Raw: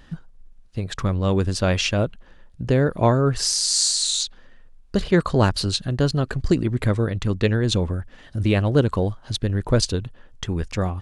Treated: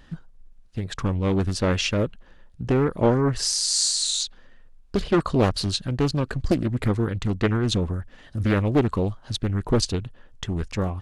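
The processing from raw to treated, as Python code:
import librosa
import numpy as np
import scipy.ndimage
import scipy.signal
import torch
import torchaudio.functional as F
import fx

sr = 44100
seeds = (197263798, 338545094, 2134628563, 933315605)

y = fx.doppler_dist(x, sr, depth_ms=0.72)
y = y * librosa.db_to_amplitude(-2.0)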